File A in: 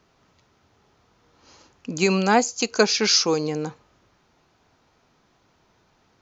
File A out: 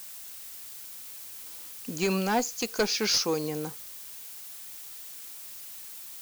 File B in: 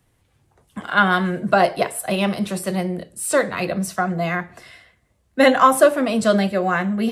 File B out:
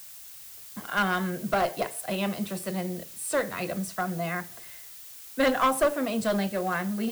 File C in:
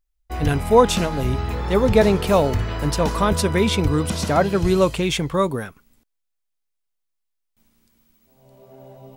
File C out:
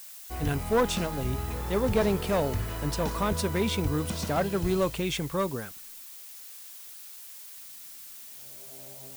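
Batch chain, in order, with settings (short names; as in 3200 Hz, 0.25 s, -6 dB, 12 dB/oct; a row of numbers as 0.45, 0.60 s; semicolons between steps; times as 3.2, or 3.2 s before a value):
one-sided clip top -14 dBFS; added noise blue -37 dBFS; normalise peaks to -12 dBFS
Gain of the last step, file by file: -6.0, -8.0, -8.5 dB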